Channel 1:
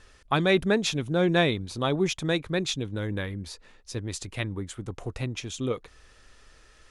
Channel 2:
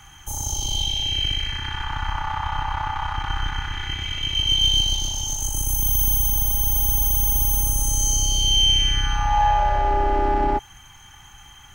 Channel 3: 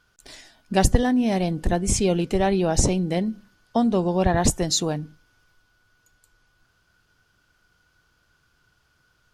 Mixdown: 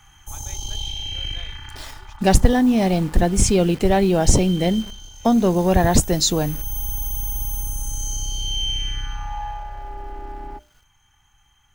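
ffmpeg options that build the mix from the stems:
-filter_complex "[0:a]highpass=750,volume=0.1[s0];[1:a]bandreject=f=60:t=h:w=6,bandreject=f=120:t=h:w=6,bandreject=f=180:t=h:w=6,bandreject=f=240:t=h:w=6,bandreject=f=300:t=h:w=6,bandreject=f=360:t=h:w=6,bandreject=f=420:t=h:w=6,bandreject=f=480:t=h:w=6,bandreject=f=540:t=h:w=6,bandreject=f=600:t=h:w=6,volume=1.5,afade=t=out:st=1.31:d=0.73:silence=0.266073,afade=t=in:st=6.26:d=0.5:silence=0.334965,afade=t=out:st=8.87:d=0.8:silence=0.421697[s1];[2:a]acontrast=86,acrusher=bits=7:dc=4:mix=0:aa=0.000001,adelay=1500,volume=0.708[s2];[s0][s1][s2]amix=inputs=3:normalize=0,lowshelf=f=75:g=5.5"

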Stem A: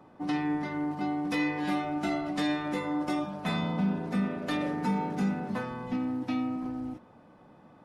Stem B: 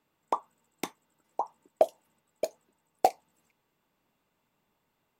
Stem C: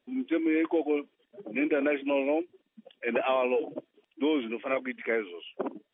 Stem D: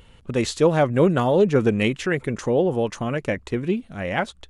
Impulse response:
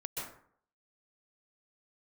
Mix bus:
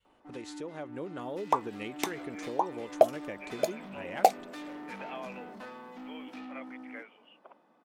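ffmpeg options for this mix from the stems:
-filter_complex "[0:a]highpass=f=200:w=0.5412,highpass=f=200:w=1.3066,asoftclip=type=tanh:threshold=0.0178,adelay=50,volume=0.398[s0];[1:a]adelay=1200,volume=0.944[s1];[2:a]highpass=f=590:w=0.5412,highpass=f=590:w=1.3066,adelay=1850,volume=0.15[s2];[3:a]agate=range=0.0224:threshold=0.00501:ratio=3:detection=peak,volume=0.158[s3];[s0][s2][s3]amix=inputs=3:normalize=0,adynamicequalizer=threshold=0.00398:dfrequency=310:dqfactor=2.1:tfrequency=310:tqfactor=2.1:attack=5:release=100:ratio=0.375:range=3:mode=boostabove:tftype=bell,acompressor=threshold=0.0158:ratio=5,volume=1[s4];[s1][s4]amix=inputs=2:normalize=0,lowshelf=f=210:g=-11,dynaudnorm=f=260:g=7:m=1.58"

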